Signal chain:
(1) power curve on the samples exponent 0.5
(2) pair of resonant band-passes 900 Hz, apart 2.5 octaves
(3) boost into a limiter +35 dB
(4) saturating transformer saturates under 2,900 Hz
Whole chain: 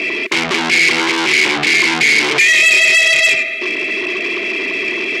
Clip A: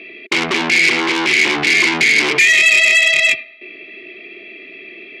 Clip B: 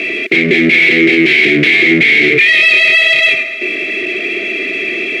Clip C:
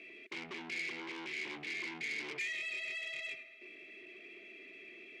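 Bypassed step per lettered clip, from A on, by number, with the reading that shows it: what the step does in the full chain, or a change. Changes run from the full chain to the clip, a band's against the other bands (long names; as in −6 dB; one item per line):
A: 1, change in crest factor +1.5 dB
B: 4, change in crest factor −3.0 dB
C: 3, change in crest factor +3.0 dB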